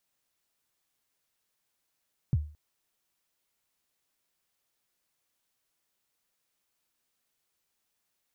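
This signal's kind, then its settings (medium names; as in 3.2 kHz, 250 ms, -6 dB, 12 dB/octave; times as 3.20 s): kick drum length 0.22 s, from 160 Hz, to 75 Hz, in 38 ms, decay 0.38 s, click off, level -18.5 dB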